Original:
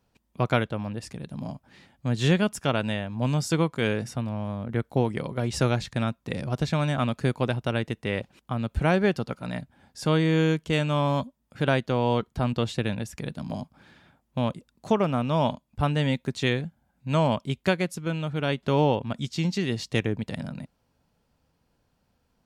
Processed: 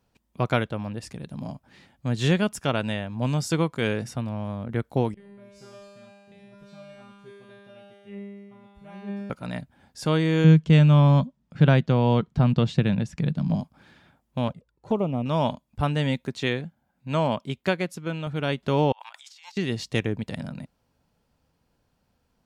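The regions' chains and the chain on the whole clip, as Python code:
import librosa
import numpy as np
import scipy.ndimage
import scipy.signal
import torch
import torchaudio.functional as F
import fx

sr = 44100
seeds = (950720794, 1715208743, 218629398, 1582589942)

y = fx.chain(x, sr, fx.low_shelf(hz=240.0, db=10.0),
    fx.comb_fb(f0_hz=200.0, decay_s=1.7, harmonics='all', damping=0.0, mix_pct=100), at=(5.14, 9.3))
y = fx.chain(y, sr, fx.lowpass(hz=5800.0, slope=12),
    fx.peak_eq(hz=160.0, db=13.0, octaves=0.86), at=(10.44, 13.61))
y = fx.chain(y, sr, fx.block_float(bits=7),
    fx.lowpass(hz=1400.0, slope=6),
    fx.env_flanger(rest_ms=2.6, full_db=-20.0), at=(14.48, 15.26))
y = fx.chain(y, sr, fx.highpass(hz=140.0, slope=6),
    fx.peak_eq(hz=9300.0, db=-4.5, octaves=1.6), at=(16.27, 18.27))
y = fx.chain(y, sr, fx.ellip_highpass(hz=820.0, order=4, stop_db=60),
    fx.over_compress(threshold_db=-49.0, ratio=-1.0), at=(18.92, 19.57))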